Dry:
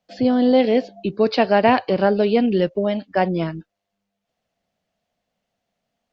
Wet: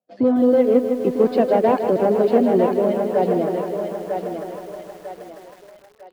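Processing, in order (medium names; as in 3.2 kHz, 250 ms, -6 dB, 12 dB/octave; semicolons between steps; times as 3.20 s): coarse spectral quantiser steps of 15 dB; reverb removal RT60 1.8 s; waveshaping leveller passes 2; band-pass filter 390 Hz, Q 0.86; on a send: thinning echo 949 ms, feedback 45%, high-pass 430 Hz, level -4.5 dB; on the sum: bit-crushed delay 157 ms, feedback 80%, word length 7-bit, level -9 dB; trim -2.5 dB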